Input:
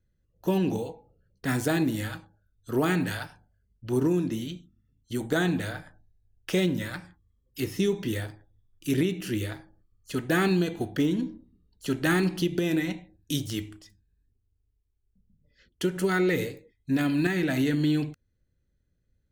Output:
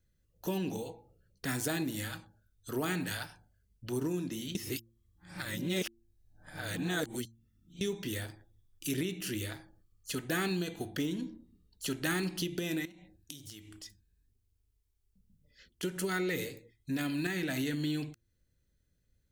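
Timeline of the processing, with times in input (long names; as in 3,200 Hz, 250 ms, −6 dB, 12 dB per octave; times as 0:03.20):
0:04.55–0:07.81: reverse
0:12.85–0:15.83: downward compressor 12 to 1, threshold −45 dBFS
whole clip: downward compressor 1.5 to 1, threshold −42 dBFS; high-shelf EQ 2,600 Hz +9 dB; hum removal 114 Hz, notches 3; level −2 dB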